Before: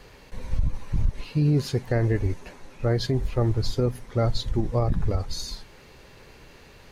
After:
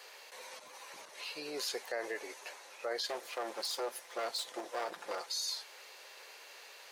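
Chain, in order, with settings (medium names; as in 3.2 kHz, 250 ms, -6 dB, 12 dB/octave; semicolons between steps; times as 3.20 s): 3.08–5.30 s: comb filter that takes the minimum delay 5.8 ms; high-pass 520 Hz 24 dB/octave; treble shelf 2.7 kHz +7.5 dB; peak limiter -24.5 dBFS, peak gain reduction 10 dB; trim -3 dB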